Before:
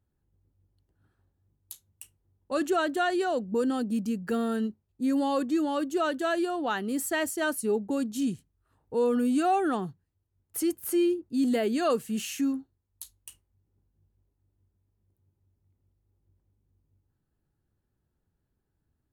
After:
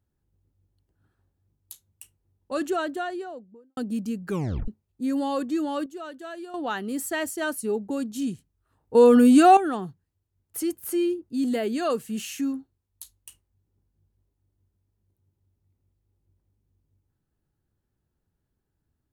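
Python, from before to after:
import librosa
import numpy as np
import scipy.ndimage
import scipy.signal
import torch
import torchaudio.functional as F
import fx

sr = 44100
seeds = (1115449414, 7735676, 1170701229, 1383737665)

y = fx.studio_fade_out(x, sr, start_s=2.6, length_s=1.17)
y = fx.edit(y, sr, fx.tape_stop(start_s=4.27, length_s=0.41),
    fx.clip_gain(start_s=5.86, length_s=0.68, db=-10.5),
    fx.clip_gain(start_s=8.95, length_s=0.62, db=10.5), tone=tone)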